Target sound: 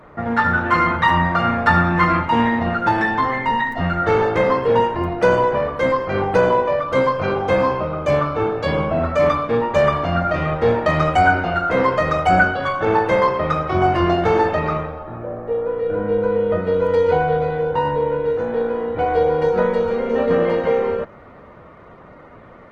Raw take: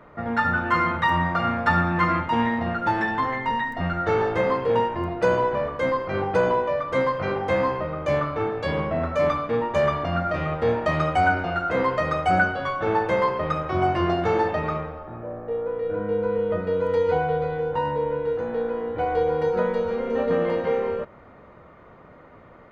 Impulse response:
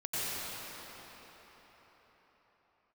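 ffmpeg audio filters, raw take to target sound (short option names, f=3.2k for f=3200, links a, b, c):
-filter_complex "[0:a]asettb=1/sr,asplit=3[a][b][c];[a]atrim=end=6.824[d];[b]atrim=start=6.82:end=9.05,asetpts=PTS-STARTPTS,afade=t=in:d=0.004:c=qsin,afade=t=out:st=2.226:d=0.004:c=qsin,bandreject=f=1.9k:w=6.2[e];[c]atrim=start=9.046[f];[d][e]acrossfade=d=0.004:c1=hsin:c2=qsin[g];[g][f]acrossfade=d=0.004:c1=qsin:c2=hsin,volume=5.5dB" -ar 48000 -c:a libopus -b:a 16k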